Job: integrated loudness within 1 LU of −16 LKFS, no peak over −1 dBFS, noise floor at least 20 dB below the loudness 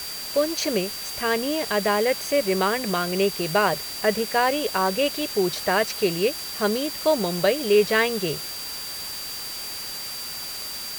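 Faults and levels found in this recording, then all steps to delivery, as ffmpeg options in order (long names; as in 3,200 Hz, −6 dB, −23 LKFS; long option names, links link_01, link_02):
interfering tone 4,700 Hz; level of the tone −34 dBFS; background noise floor −33 dBFS; target noise floor −44 dBFS; integrated loudness −23.5 LKFS; sample peak −7.5 dBFS; target loudness −16.0 LKFS
→ -af "bandreject=frequency=4700:width=30"
-af "afftdn=noise_reduction=11:noise_floor=-33"
-af "volume=7.5dB,alimiter=limit=-1dB:level=0:latency=1"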